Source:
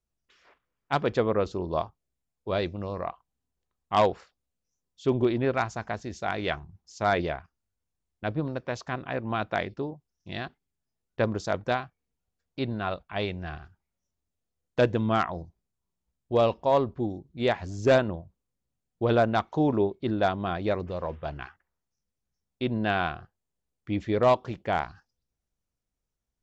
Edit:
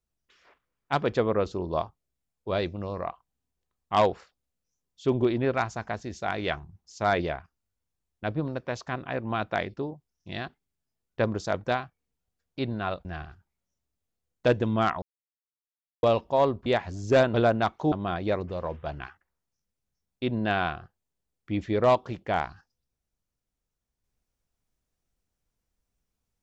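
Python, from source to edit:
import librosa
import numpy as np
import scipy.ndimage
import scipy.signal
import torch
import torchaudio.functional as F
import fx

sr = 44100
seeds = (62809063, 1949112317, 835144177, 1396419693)

y = fx.edit(x, sr, fx.cut(start_s=13.05, length_s=0.33),
    fx.silence(start_s=15.35, length_s=1.01),
    fx.cut(start_s=16.99, length_s=0.42),
    fx.cut(start_s=18.09, length_s=0.98),
    fx.cut(start_s=19.65, length_s=0.66), tone=tone)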